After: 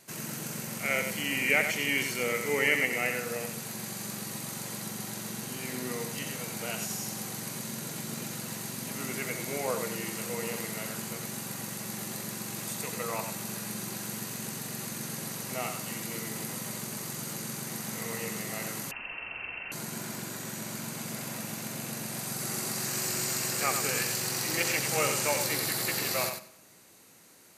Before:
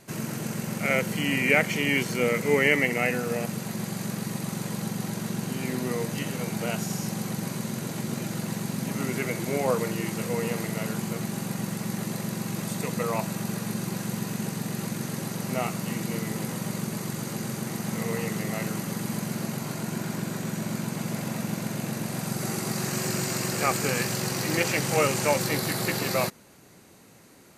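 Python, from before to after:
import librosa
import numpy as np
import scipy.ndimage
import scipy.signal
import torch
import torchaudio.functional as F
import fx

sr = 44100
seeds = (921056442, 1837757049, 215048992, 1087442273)

y = fx.tilt_eq(x, sr, slope=2.0)
y = fx.echo_feedback(y, sr, ms=95, feedback_pct=17, wet_db=-7.0)
y = fx.rev_freeverb(y, sr, rt60_s=0.95, hf_ratio=0.75, predelay_ms=15, drr_db=19.5)
y = fx.freq_invert(y, sr, carrier_hz=2900, at=(18.91, 19.72))
y = y * 10.0 ** (-5.5 / 20.0)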